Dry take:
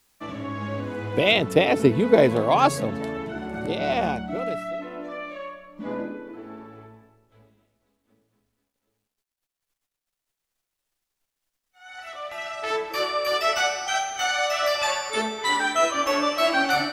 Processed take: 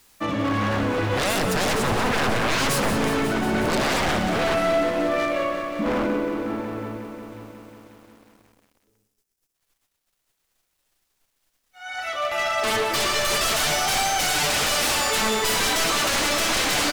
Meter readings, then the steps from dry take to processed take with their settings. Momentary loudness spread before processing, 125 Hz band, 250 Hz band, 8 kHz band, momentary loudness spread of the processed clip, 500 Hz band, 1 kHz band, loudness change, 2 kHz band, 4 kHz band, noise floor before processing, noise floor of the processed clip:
17 LU, +2.5 dB, +2.0 dB, +10.0 dB, 9 LU, -1.0 dB, +1.0 dB, +1.5 dB, +2.5 dB, +5.0 dB, -85 dBFS, -75 dBFS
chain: time-frequency box 7.47–9.55 s, 530–4800 Hz -6 dB; peak limiter -15 dBFS, peak gain reduction 11 dB; wavefolder -27.5 dBFS; on a send: delay 119 ms -13 dB; on the sum: bit-crushed delay 181 ms, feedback 80%, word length 10-bit, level -10 dB; trim +9 dB

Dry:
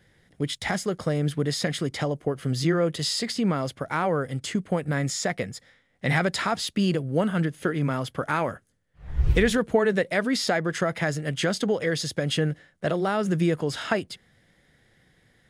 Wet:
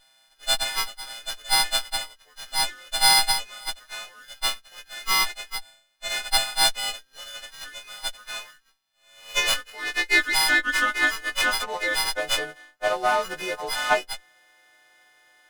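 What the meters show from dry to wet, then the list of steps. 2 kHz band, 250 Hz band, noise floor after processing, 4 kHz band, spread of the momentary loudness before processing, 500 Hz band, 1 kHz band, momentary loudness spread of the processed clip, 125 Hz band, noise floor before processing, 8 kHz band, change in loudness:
+6.5 dB, -17.0 dB, -62 dBFS, +9.0 dB, 7 LU, -7.5 dB, +3.5 dB, 18 LU, -24.0 dB, -64 dBFS, +7.0 dB, +3.0 dB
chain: partials quantised in pitch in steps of 3 st; high-pass sweep 3.9 kHz -> 770 Hz, 8.92–12.12 s; sliding maximum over 5 samples

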